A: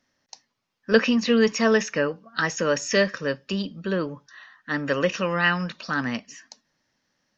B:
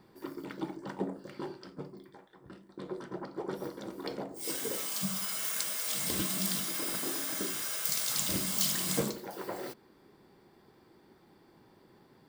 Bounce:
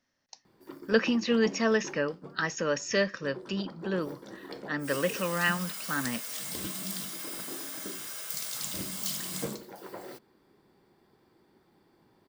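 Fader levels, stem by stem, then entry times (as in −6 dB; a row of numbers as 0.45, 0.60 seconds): −6.0, −4.0 decibels; 0.00, 0.45 seconds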